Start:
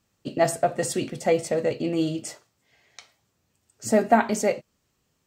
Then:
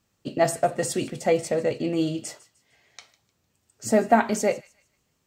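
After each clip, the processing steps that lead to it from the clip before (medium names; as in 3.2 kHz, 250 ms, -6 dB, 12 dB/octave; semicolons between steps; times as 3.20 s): feedback echo behind a high-pass 152 ms, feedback 32%, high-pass 1.9 kHz, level -19 dB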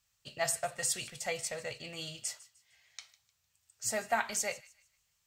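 amplifier tone stack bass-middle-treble 10-0-10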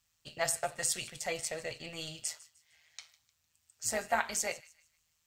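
AM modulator 160 Hz, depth 45%; trim +3 dB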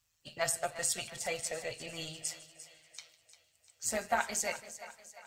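coarse spectral quantiser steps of 15 dB; two-band feedback delay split 540 Hz, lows 186 ms, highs 348 ms, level -14 dB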